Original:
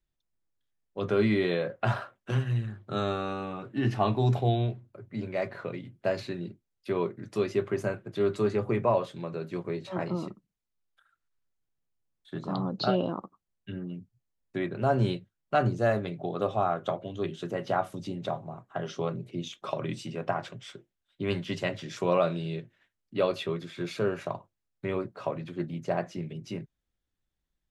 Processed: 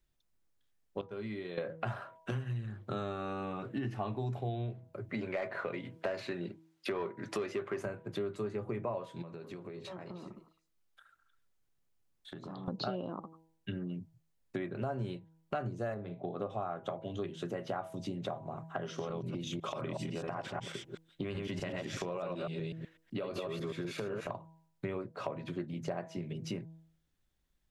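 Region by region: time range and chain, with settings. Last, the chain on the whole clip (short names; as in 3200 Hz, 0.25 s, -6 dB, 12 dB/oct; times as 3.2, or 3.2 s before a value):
1.01–1.58 expander -21 dBFS + compressor 4:1, threshold -43 dBFS
5.09–7.86 HPF 42 Hz + overdrive pedal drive 16 dB, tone 3700 Hz, clips at -15 dBFS
9.22–12.68 compressor 10:1, threshold -46 dBFS + delay with a stepping band-pass 0.103 s, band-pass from 410 Hz, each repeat 1.4 oct, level -8 dB
15.94–16.5 high shelf 2500 Hz -11 dB + flutter echo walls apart 6.7 m, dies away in 0.22 s + upward expander, over -39 dBFS
18.85–24.31 reverse delay 0.125 s, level -2 dB + compressor, threshold -30 dBFS
whole clip: de-hum 161.8 Hz, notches 6; dynamic EQ 4400 Hz, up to -5 dB, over -50 dBFS, Q 1.1; compressor 5:1, threshold -40 dBFS; gain +4.5 dB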